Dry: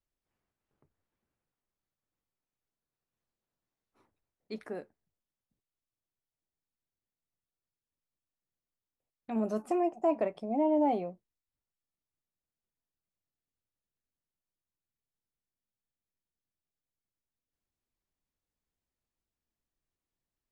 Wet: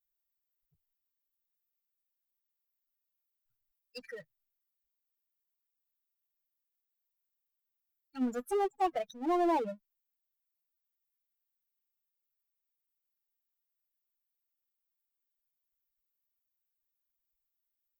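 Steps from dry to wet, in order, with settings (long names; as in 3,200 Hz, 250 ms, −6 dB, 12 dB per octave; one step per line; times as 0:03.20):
spectral dynamics exaggerated over time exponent 3
speed change +14%
power curve on the samples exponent 0.7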